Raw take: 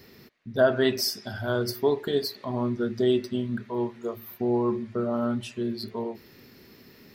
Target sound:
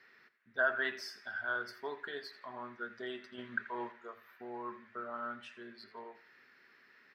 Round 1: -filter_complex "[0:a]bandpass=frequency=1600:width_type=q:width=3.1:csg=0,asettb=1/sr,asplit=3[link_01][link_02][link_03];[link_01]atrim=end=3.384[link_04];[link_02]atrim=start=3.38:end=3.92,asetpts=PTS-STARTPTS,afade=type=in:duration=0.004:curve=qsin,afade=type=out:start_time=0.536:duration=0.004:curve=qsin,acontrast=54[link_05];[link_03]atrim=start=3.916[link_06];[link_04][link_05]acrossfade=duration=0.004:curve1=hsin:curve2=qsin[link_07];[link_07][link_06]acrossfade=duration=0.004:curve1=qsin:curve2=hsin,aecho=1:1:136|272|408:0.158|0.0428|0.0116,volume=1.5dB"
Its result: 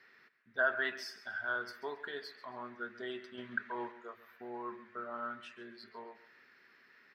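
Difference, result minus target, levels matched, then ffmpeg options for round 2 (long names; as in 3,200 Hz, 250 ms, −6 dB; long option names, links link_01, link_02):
echo 52 ms late
-filter_complex "[0:a]bandpass=frequency=1600:width_type=q:width=3.1:csg=0,asettb=1/sr,asplit=3[link_01][link_02][link_03];[link_01]atrim=end=3.384[link_04];[link_02]atrim=start=3.38:end=3.92,asetpts=PTS-STARTPTS,afade=type=in:duration=0.004:curve=qsin,afade=type=out:start_time=0.536:duration=0.004:curve=qsin,acontrast=54[link_05];[link_03]atrim=start=3.916[link_06];[link_04][link_05]acrossfade=duration=0.004:curve1=hsin:curve2=qsin[link_07];[link_07][link_06]acrossfade=duration=0.004:curve1=qsin:curve2=hsin,aecho=1:1:84|168|252:0.158|0.0428|0.0116,volume=1.5dB"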